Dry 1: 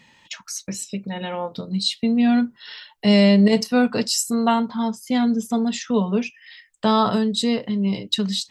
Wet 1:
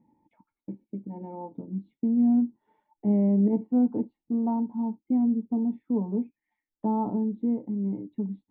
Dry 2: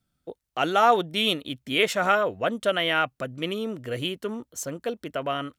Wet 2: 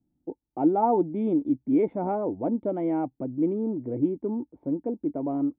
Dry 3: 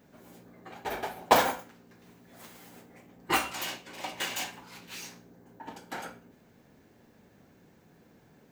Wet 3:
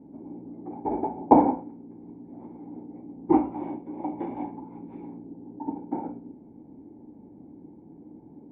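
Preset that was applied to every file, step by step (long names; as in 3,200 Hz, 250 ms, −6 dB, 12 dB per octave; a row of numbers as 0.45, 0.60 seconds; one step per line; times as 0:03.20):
formant resonators in series u
loudness normalisation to −27 LKFS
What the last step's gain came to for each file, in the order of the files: +3.0, +12.5, +19.5 decibels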